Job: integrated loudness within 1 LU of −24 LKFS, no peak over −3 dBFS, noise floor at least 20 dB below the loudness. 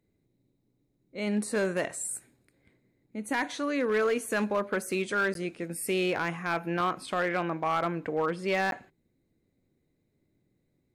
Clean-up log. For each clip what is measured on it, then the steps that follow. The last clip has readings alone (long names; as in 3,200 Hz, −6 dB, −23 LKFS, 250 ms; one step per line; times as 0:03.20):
share of clipped samples 0.6%; peaks flattened at −21.0 dBFS; number of dropouts 2; longest dropout 12 ms; integrated loudness −30.0 LKFS; sample peak −21.0 dBFS; target loudness −24.0 LKFS
→ clipped peaks rebuilt −21 dBFS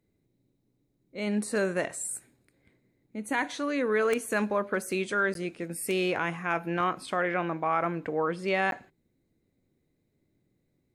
share of clipped samples 0.0%; number of dropouts 2; longest dropout 12 ms
→ repair the gap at 0:05.34/0:08.71, 12 ms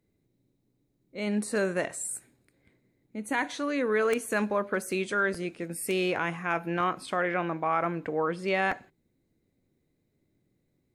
number of dropouts 0; integrated loudness −29.5 LKFS; sample peak −12.0 dBFS; target loudness −24.0 LKFS
→ level +5.5 dB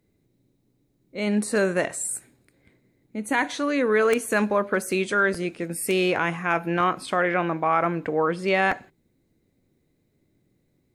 integrated loudness −24.0 LKFS; sample peak −6.5 dBFS; background noise floor −70 dBFS